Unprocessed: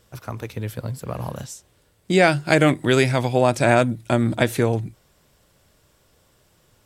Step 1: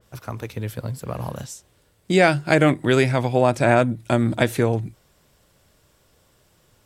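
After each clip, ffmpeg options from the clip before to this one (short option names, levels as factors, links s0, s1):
-af "adynamicequalizer=threshold=0.0178:dfrequency=2700:dqfactor=0.7:tfrequency=2700:tqfactor=0.7:attack=5:release=100:ratio=0.375:range=3.5:mode=cutabove:tftype=highshelf"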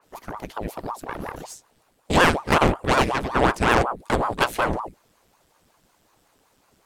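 -af "aeval=exprs='0.75*(cos(1*acos(clip(val(0)/0.75,-1,1)))-cos(1*PI/2))+0.106*(cos(8*acos(clip(val(0)/0.75,-1,1)))-cos(8*PI/2))':c=same,aeval=exprs='val(0)*sin(2*PI*570*n/s+570*0.9/5.4*sin(2*PI*5.4*n/s))':c=same"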